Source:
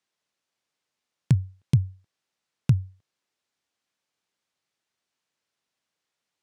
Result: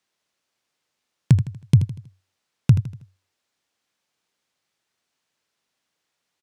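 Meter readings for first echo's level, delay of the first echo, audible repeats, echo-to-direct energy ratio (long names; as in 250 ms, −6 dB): −11.5 dB, 80 ms, 4, −10.5 dB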